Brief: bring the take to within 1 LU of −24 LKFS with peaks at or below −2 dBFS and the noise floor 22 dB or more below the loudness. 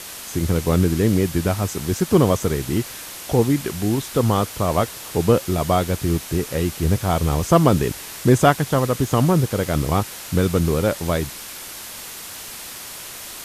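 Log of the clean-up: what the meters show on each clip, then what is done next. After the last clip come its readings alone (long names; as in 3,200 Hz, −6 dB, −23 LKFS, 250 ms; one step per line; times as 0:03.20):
background noise floor −36 dBFS; target noise floor −43 dBFS; integrated loudness −20.5 LKFS; sample peak −1.5 dBFS; target loudness −24.0 LKFS
→ broadband denoise 7 dB, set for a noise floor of −36 dBFS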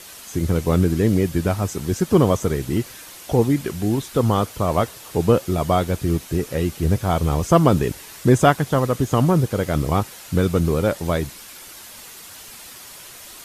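background noise floor −41 dBFS; target noise floor −43 dBFS
→ broadband denoise 6 dB, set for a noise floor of −41 dBFS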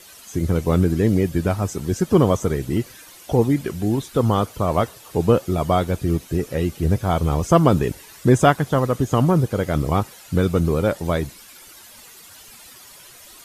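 background noise floor −45 dBFS; integrated loudness −20.5 LKFS; sample peak −1.5 dBFS; target loudness −24.0 LKFS
→ level −3.5 dB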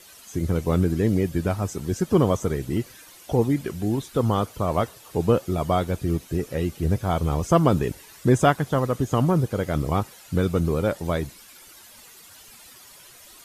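integrated loudness −24.0 LKFS; sample peak −5.0 dBFS; background noise floor −48 dBFS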